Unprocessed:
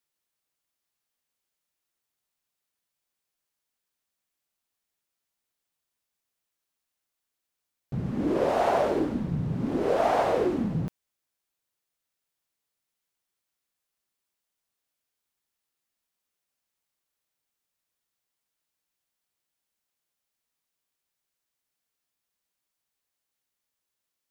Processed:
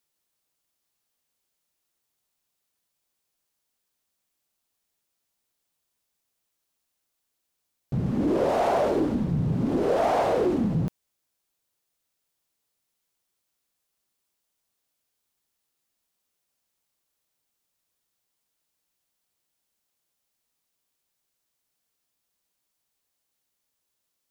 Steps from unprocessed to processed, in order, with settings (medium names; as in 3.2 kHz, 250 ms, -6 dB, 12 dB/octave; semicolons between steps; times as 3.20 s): peaking EQ 1.8 kHz -3.5 dB 1.6 oct; in parallel at -1.5 dB: peak limiter -23.5 dBFS, peak gain reduction 11 dB; on the sum: saturation -14 dBFS, distortion -22 dB